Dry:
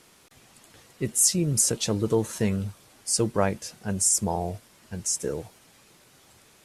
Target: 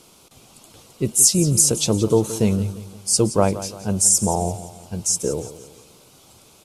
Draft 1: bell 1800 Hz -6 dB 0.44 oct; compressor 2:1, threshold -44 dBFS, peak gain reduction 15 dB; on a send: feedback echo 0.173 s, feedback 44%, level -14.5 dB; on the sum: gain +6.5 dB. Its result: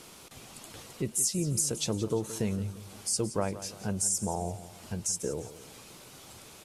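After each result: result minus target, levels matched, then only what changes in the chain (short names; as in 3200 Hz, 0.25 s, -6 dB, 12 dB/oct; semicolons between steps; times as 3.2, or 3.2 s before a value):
compressor: peak gain reduction +15 dB; 2000 Hz band +6.0 dB
remove: compressor 2:1, threshold -44 dBFS, peak gain reduction 15 dB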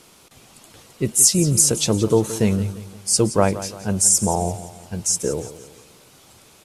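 2000 Hz band +4.5 dB
change: bell 1800 Hz -16.5 dB 0.44 oct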